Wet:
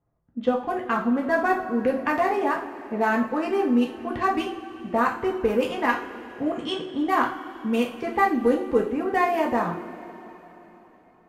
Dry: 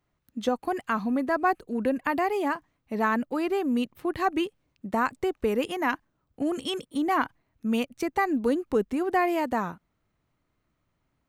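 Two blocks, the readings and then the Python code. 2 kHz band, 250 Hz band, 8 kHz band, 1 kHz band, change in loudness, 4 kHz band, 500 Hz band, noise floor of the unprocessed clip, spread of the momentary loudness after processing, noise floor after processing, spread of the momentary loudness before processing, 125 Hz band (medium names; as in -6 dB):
+3.5 dB, +2.5 dB, no reading, +3.5 dB, +3.0 dB, +1.5 dB, +4.0 dB, -77 dBFS, 10 LU, -56 dBFS, 7 LU, +3.0 dB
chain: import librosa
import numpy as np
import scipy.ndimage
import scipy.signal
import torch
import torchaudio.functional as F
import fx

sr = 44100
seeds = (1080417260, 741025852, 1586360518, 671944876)

y = fx.wiener(x, sr, points=9)
y = fx.env_lowpass(y, sr, base_hz=1000.0, full_db=-22.5)
y = fx.rev_double_slope(y, sr, seeds[0], early_s=0.39, late_s=4.0, knee_db=-19, drr_db=-2.0)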